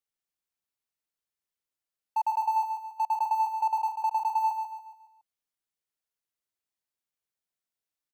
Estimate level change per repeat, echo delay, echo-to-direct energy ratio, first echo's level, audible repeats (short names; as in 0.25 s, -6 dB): -7.5 dB, 0.14 s, -5.5 dB, -6.5 dB, 4